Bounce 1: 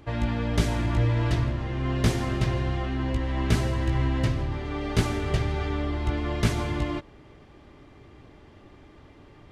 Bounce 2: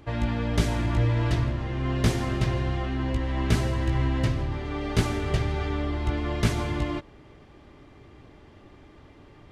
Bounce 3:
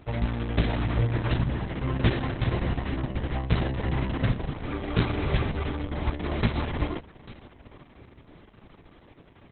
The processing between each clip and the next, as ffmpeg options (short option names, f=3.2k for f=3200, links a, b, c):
-af anull
-af "aecho=1:1:844:0.0944" -ar 48000 -c:a libopus -b:a 6k